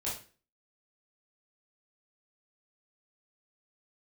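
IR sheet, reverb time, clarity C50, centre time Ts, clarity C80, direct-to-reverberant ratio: 0.35 s, 5.0 dB, 36 ms, 11.5 dB, −8.0 dB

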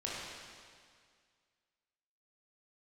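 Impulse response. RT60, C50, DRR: 2.0 s, −3.0 dB, −6.5 dB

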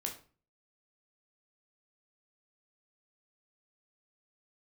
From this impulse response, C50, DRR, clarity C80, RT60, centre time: 9.5 dB, 1.0 dB, 15.0 dB, 0.40 s, 18 ms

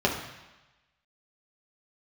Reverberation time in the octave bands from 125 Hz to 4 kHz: 1.1, 1.0, 1.0, 1.1, 1.2, 1.1 seconds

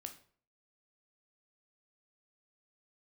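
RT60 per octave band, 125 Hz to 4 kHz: 0.55, 0.50, 0.50, 0.45, 0.40, 0.35 seconds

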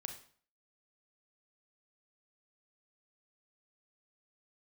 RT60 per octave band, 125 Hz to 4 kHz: 0.50, 0.50, 0.45, 0.50, 0.45, 0.45 seconds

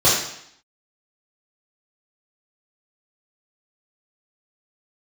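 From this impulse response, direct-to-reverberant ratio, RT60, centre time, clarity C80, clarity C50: −9.0 dB, 0.70 s, 52 ms, 5.5 dB, 2.0 dB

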